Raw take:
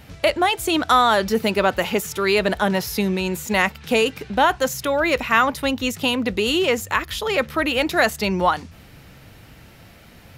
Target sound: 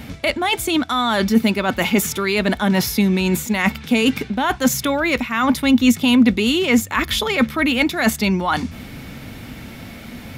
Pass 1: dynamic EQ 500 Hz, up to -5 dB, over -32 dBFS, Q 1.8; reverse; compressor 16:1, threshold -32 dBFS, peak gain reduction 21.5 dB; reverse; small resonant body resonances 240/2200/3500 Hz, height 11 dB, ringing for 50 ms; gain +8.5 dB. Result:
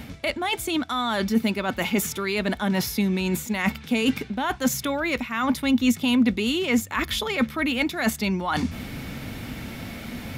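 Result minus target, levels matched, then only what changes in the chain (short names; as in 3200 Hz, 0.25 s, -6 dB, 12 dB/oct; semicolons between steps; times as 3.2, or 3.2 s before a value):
compressor: peak gain reduction +6.5 dB
change: compressor 16:1, threshold -25 dBFS, peak gain reduction 15 dB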